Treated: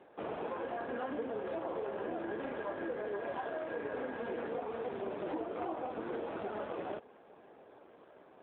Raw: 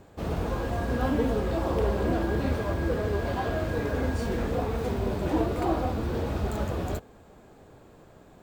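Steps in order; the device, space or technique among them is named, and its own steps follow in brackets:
voicemail (band-pass filter 370–3,200 Hz; downward compressor 6 to 1, threshold −34 dBFS, peak gain reduction 10 dB; AMR narrowband 7.4 kbit/s 8,000 Hz)

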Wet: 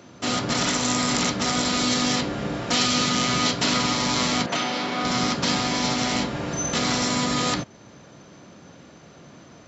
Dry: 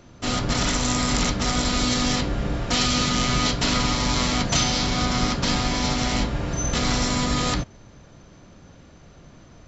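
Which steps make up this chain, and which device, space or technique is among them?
high-pass filter 160 Hz 12 dB per octave
parallel compression (in parallel at −5 dB: downward compressor, threshold −37 dBFS, peak gain reduction 17.5 dB)
0:04.46–0:05.05: on the sum: three-way crossover with the lows and the highs turned down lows −15 dB, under 210 Hz, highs −14 dB, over 3,300 Hz

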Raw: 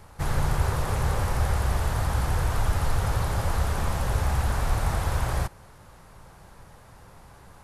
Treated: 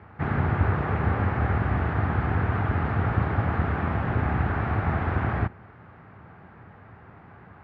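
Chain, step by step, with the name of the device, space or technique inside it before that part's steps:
sub-octave bass pedal (sub-octave generator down 2 octaves, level +1 dB; loudspeaker in its box 86–2,200 Hz, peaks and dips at 140 Hz −4 dB, 540 Hz −8 dB, 970 Hz −6 dB)
level +5 dB

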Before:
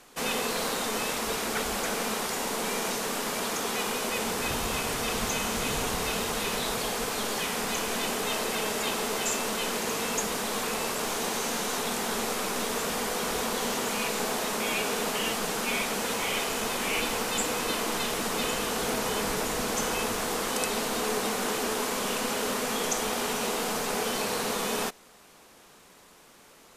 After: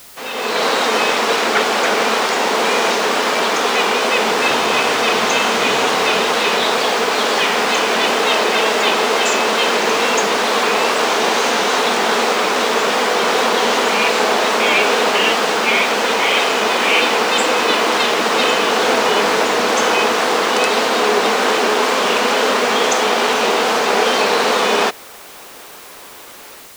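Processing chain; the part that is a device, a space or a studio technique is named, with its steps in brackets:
dictaphone (band-pass filter 340–4,400 Hz; automatic gain control gain up to 15.5 dB; tape wow and flutter; white noise bed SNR 24 dB)
level +1.5 dB

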